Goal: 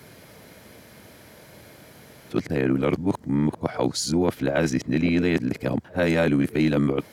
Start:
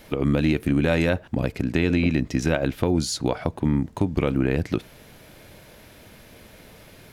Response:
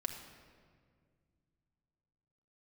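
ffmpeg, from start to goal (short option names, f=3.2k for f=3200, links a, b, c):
-filter_complex "[0:a]areverse,highpass=89,equalizer=f=2.7k:w=6.1:g=-6,bandreject=f=3.6k:w=15,acrossover=split=130[a][b];[a]asoftclip=type=tanh:threshold=-39dB[c];[c][b]amix=inputs=2:normalize=0,volume=1dB"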